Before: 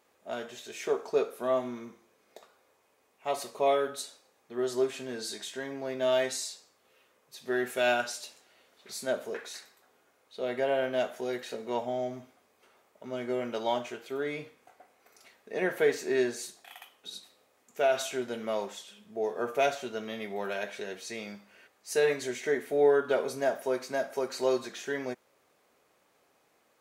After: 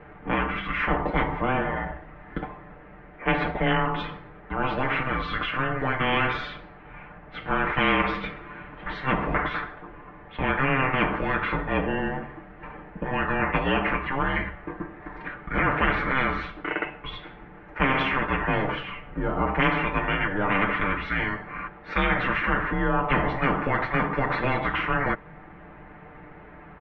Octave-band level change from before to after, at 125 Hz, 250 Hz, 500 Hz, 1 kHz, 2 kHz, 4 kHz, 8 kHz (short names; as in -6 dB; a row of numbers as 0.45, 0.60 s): +20.0 dB, +9.5 dB, -1.5 dB, +10.5 dB, +12.5 dB, +5.0 dB, under -25 dB